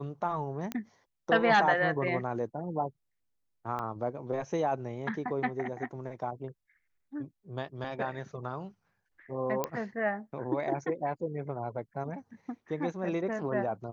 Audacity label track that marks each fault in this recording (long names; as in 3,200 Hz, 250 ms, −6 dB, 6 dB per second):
0.720000	0.720000	click −19 dBFS
3.790000	3.790000	drop-out 2.6 ms
9.640000	9.640000	click −15 dBFS